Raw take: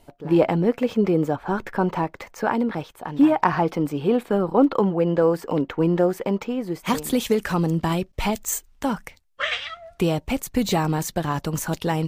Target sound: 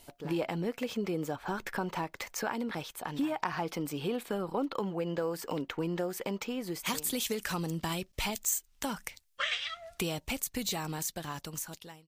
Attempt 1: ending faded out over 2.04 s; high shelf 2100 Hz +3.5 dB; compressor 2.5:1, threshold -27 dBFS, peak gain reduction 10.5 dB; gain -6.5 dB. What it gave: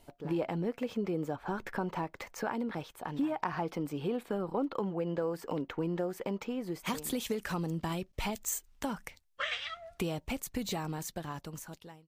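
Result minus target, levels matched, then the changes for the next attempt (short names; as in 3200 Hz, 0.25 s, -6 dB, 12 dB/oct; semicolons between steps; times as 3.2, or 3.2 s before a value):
4000 Hz band -4.0 dB
change: high shelf 2100 Hz +14.5 dB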